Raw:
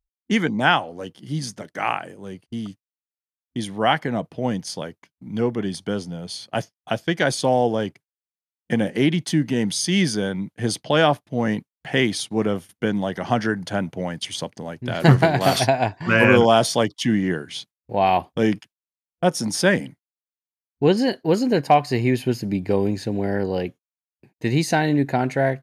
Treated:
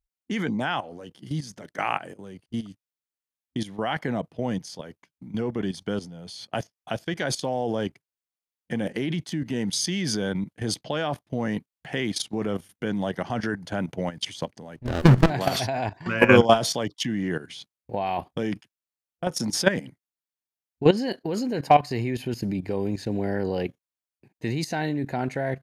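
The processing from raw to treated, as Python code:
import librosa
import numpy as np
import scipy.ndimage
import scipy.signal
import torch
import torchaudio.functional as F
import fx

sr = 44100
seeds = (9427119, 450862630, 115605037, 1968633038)

y = fx.dynamic_eq(x, sr, hz=9100.0, q=6.4, threshold_db=-51.0, ratio=4.0, max_db=-7)
y = fx.level_steps(y, sr, step_db=14)
y = fx.running_max(y, sr, window=33, at=(14.76, 15.3))
y = y * 10.0 ** (1.5 / 20.0)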